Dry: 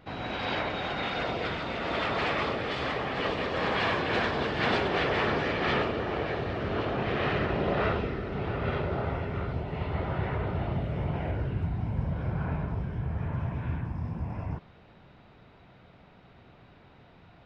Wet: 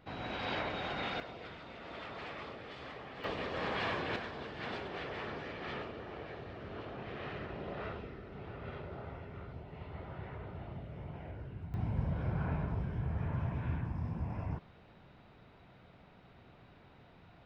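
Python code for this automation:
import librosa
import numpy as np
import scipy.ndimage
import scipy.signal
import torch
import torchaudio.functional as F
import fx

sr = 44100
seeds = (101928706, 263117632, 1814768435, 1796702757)

y = fx.gain(x, sr, db=fx.steps((0.0, -6.0), (1.2, -16.0), (3.24, -8.0), (4.16, -14.5), (11.74, -4.0)))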